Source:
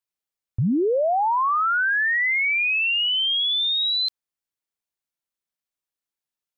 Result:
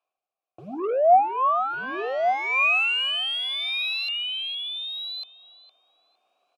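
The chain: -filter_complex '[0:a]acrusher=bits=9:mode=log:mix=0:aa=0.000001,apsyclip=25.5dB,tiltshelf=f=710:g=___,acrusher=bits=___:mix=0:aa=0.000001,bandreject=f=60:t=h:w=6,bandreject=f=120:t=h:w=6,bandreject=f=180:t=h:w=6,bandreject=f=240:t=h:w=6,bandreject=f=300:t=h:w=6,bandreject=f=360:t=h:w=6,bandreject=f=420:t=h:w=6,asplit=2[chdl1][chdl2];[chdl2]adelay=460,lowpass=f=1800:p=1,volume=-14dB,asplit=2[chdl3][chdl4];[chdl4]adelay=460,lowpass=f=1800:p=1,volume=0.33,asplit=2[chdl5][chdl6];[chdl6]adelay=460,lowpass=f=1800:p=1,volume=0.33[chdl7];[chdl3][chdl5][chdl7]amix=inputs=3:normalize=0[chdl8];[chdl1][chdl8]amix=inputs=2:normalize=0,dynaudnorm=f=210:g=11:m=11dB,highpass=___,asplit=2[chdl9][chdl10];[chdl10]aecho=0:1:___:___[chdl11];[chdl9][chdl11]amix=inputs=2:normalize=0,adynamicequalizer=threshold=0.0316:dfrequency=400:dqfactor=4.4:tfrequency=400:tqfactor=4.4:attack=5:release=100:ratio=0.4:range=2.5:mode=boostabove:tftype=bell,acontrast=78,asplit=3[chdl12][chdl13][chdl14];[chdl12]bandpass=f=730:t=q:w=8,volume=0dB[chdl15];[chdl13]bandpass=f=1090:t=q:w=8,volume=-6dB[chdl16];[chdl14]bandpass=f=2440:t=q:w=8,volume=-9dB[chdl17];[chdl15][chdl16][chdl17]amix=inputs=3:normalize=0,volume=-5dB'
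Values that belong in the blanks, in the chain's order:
7.5, 11, 290, 1149, 0.531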